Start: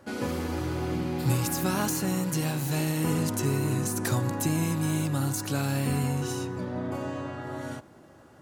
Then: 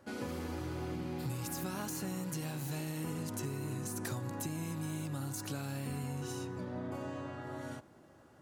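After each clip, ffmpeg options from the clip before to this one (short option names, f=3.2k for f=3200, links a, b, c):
-af "acompressor=threshold=-28dB:ratio=6,volume=-7dB"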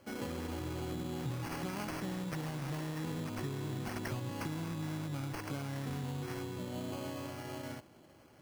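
-af "acrusher=samples=12:mix=1:aa=0.000001"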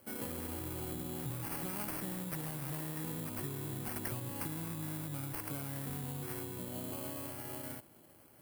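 -af "aexciter=amount=3.5:drive=8.4:freq=8.4k,volume=-3dB"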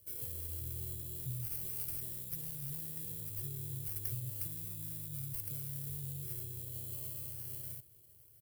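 -af "firequalizer=gain_entry='entry(130,0);entry(200,-28);entry(410,-11);entry(750,-25);entry(3200,-9);entry(5200,-5);entry(14000,1)':delay=0.05:min_phase=1,volume=2dB"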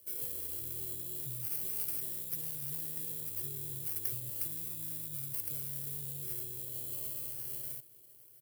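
-af "highpass=210,volume=4dB"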